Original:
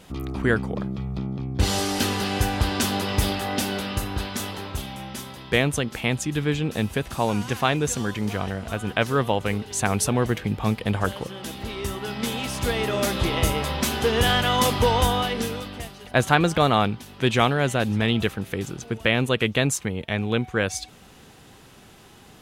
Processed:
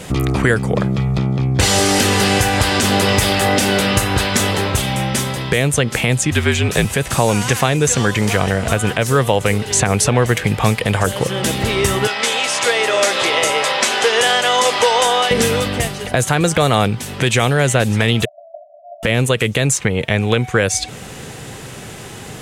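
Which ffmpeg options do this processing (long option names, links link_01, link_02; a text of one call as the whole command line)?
ffmpeg -i in.wav -filter_complex "[0:a]asettb=1/sr,asplit=3[link_01][link_02][link_03];[link_01]atrim=end=6.314[link_04];[link_02]atrim=start=6.31:end=6.85,asetpts=PTS-STARTPTS,afade=type=in:duration=0.004:curve=qsin,afade=type=out:start_time=0.536:duration=0.004:curve=qsin,afreqshift=-53[link_05];[link_03]atrim=start=6.846[link_06];[link_04][link_05]acrossfade=duration=0.004:curve1=hsin:curve2=qsin[link_07];[link_07][link_06]acrossfade=duration=0.004:curve1=qsin:curve2=hsin,asettb=1/sr,asplit=3[link_08][link_09][link_10];[link_08]atrim=end=12.074[link_11];[link_09]atrim=start=12.07:end=15.31,asetpts=PTS-STARTPTS,afade=type=in:duration=0.004:curve=qsin,afade=type=out:start_time=3.236:duration=0.004:curve=qsin,highpass=740,lowpass=7300[link_12];[link_10]atrim=start=15.306[link_13];[link_11][link_12]acrossfade=duration=0.004:curve1=hsin:curve2=qsin[link_14];[link_14][link_13]acrossfade=duration=0.004:curve1=qsin:curve2=hsin,asettb=1/sr,asplit=3[link_15][link_16][link_17];[link_15]atrim=end=18.254[link_18];[link_16]atrim=start=18.25:end=19.03,asetpts=PTS-STARTPTS,afade=type=in:duration=0.004:curve=qsin,afade=type=out:start_time=0.776:duration=0.004:curve=qsin,asuperpass=centerf=650:order=12:qfactor=5.2[link_19];[link_17]atrim=start=19.026[link_20];[link_18][link_19]acrossfade=duration=0.004:curve1=hsin:curve2=qsin[link_21];[link_21][link_20]acrossfade=duration=0.004:curve1=qsin:curve2=hsin,equalizer=frequency=125:width_type=o:width=1:gain=9,equalizer=frequency=500:width_type=o:width=1:gain=7,equalizer=frequency=2000:width_type=o:width=1:gain=6,equalizer=frequency=8000:width_type=o:width=1:gain=9,acrossover=split=640|5400[link_22][link_23][link_24];[link_22]acompressor=threshold=-27dB:ratio=4[link_25];[link_23]acompressor=threshold=-28dB:ratio=4[link_26];[link_24]acompressor=threshold=-33dB:ratio=4[link_27];[link_25][link_26][link_27]amix=inputs=3:normalize=0,alimiter=level_in=12.5dB:limit=-1dB:release=50:level=0:latency=1,volume=-1dB" out.wav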